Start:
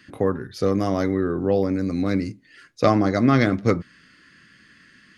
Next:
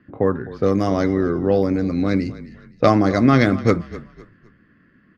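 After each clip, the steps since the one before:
low-pass that shuts in the quiet parts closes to 880 Hz, open at −15 dBFS
echo with shifted repeats 256 ms, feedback 33%, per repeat −32 Hz, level −17 dB
level +3 dB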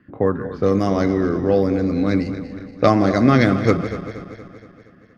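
feedback delay that plays each chunk backwards 118 ms, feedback 74%, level −12.5 dB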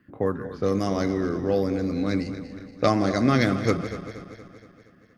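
high-shelf EQ 4,800 Hz +11.5 dB
level −6.5 dB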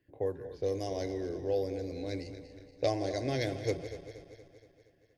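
phaser with its sweep stopped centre 520 Hz, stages 4
level −6.5 dB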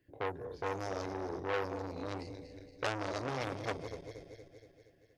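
saturating transformer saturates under 2,700 Hz
level +1 dB

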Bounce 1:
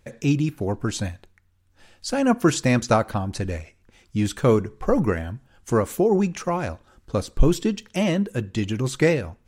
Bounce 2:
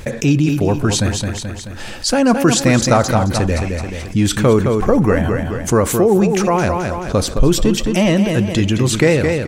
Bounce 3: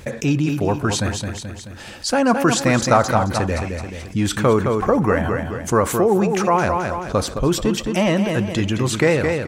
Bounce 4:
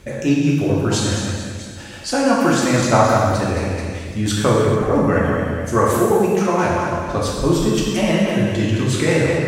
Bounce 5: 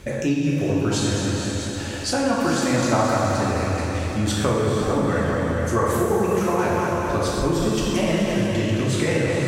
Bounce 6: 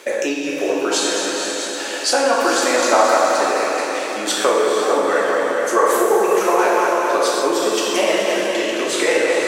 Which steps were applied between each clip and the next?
repeating echo 216 ms, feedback 34%, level −9 dB; envelope flattener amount 50%; level +2 dB
high-pass filter 44 Hz; dynamic equaliser 1,100 Hz, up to +7 dB, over −29 dBFS, Q 0.75; level −5.5 dB
rotating-speaker cabinet horn 6 Hz; reverb whose tail is shaped and stops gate 470 ms falling, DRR −4.5 dB; level −2 dB
downward compressor 2 to 1, threshold −26 dBFS, peak gain reduction 9.5 dB; on a send: feedback delay with all-pass diffusion 470 ms, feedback 46%, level −7 dB; on the sum: level +2 dB
high-pass filter 380 Hz 24 dB per octave; level +7.5 dB

